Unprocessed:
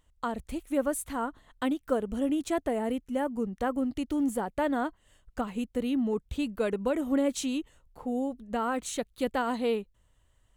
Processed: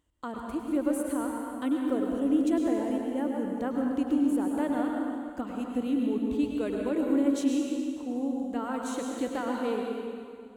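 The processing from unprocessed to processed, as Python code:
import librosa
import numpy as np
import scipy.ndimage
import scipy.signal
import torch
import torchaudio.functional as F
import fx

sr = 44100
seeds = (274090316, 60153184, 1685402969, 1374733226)

y = scipy.signal.sosfilt(scipy.signal.butter(2, 45.0, 'highpass', fs=sr, output='sos'), x)
y = fx.peak_eq(y, sr, hz=310.0, db=10.0, octaves=0.6)
y = fx.rev_plate(y, sr, seeds[0], rt60_s=2.2, hf_ratio=0.85, predelay_ms=90, drr_db=0.0)
y = y * 10.0 ** (-6.5 / 20.0)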